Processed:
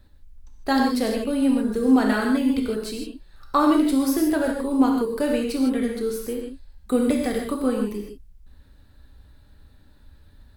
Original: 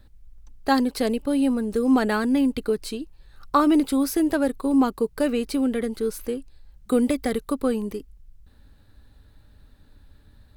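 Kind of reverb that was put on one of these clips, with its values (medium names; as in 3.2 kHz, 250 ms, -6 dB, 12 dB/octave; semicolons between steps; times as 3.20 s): gated-style reverb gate 180 ms flat, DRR 0 dB; trim -2 dB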